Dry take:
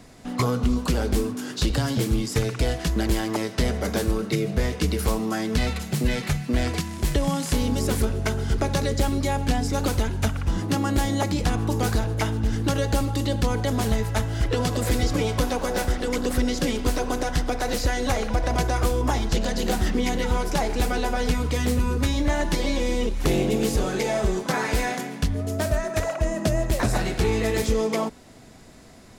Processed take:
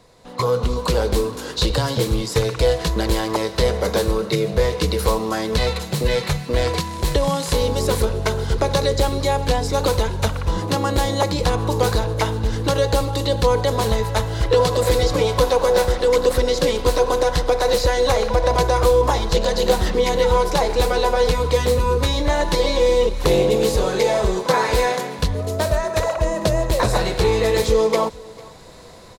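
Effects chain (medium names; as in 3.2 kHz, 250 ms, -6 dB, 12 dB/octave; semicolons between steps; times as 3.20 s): level rider gain up to 10.5 dB; graphic EQ with 31 bands 250 Hz -10 dB, 500 Hz +11 dB, 1 kHz +9 dB, 4 kHz +8 dB; on a send: delay 449 ms -22.5 dB; on the sum: trim -6 dB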